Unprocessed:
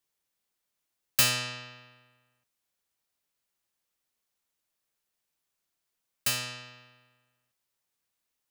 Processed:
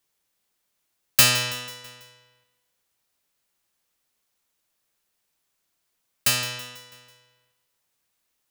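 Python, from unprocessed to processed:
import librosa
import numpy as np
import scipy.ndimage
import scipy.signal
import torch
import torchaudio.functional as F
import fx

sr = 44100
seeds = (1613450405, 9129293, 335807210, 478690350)

y = fx.echo_feedback(x, sr, ms=164, feedback_pct=53, wet_db=-16.0)
y = y * librosa.db_to_amplitude(7.0)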